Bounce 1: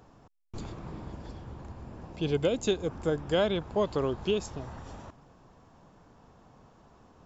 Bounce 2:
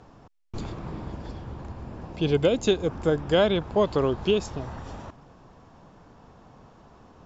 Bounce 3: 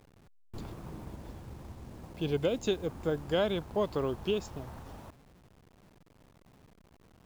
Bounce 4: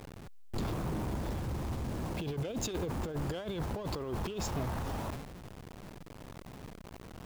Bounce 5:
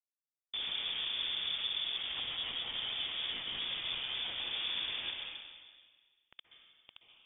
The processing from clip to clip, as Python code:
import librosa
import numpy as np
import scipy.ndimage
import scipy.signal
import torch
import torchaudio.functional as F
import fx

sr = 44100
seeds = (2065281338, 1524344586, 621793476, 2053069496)

y1 = scipy.signal.sosfilt(scipy.signal.butter(2, 6500.0, 'lowpass', fs=sr, output='sos'), x)
y1 = y1 * 10.0 ** (5.5 / 20.0)
y2 = fx.delta_hold(y1, sr, step_db=-45.0)
y2 = y2 * 10.0 ** (-8.0 / 20.0)
y3 = fx.over_compress(y2, sr, threshold_db=-37.0, ratio=-0.5)
y3 = fx.leveller(y3, sr, passes=3)
y3 = fx.sustainer(y3, sr, db_per_s=62.0)
y3 = y3 * 10.0 ** (-4.5 / 20.0)
y4 = fx.quant_dither(y3, sr, seeds[0], bits=6, dither='none')
y4 = fx.rev_plate(y4, sr, seeds[1], rt60_s=1.6, hf_ratio=0.95, predelay_ms=115, drr_db=1.5)
y4 = fx.freq_invert(y4, sr, carrier_hz=3500)
y4 = y4 * 10.0 ** (-7.0 / 20.0)